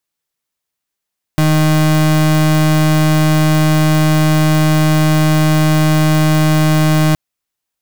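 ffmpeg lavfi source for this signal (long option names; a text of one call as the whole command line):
ffmpeg -f lavfi -i "aevalsrc='0.282*(2*lt(mod(155*t,1),0.35)-1)':duration=5.77:sample_rate=44100" out.wav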